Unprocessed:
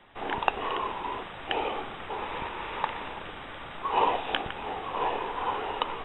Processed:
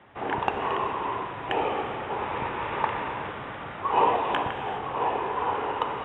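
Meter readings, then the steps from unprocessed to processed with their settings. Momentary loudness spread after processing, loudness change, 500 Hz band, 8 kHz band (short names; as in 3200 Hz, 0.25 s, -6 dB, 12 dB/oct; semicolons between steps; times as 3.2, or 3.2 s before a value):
9 LU, +3.5 dB, +4.5 dB, n/a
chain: HPF 70 Hz; bell 120 Hz +4.5 dB 0.62 oct; in parallel at +2.5 dB: vocal rider 2 s; on the sum: soft clip -5 dBFS, distortion -17 dB; running mean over 9 samples; non-linear reverb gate 0.44 s flat, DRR 5.5 dB; gain -4.5 dB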